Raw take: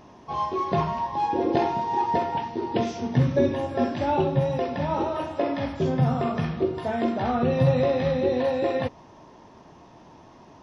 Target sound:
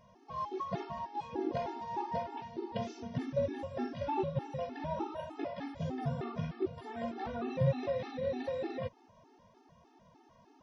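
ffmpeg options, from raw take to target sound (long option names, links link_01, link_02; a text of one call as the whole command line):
ffmpeg -i in.wav -af "aeval=exprs='0.355*(cos(1*acos(clip(val(0)/0.355,-1,1)))-cos(1*PI/2))+0.00562*(cos(7*acos(clip(val(0)/0.355,-1,1)))-cos(7*PI/2))':channel_layout=same,afftfilt=real='re*gt(sin(2*PI*3.3*pts/sr)*(1-2*mod(floor(b*sr/1024/230),2)),0)':imag='im*gt(sin(2*PI*3.3*pts/sr)*(1-2*mod(floor(b*sr/1024/230),2)),0)':win_size=1024:overlap=0.75,volume=-8.5dB" out.wav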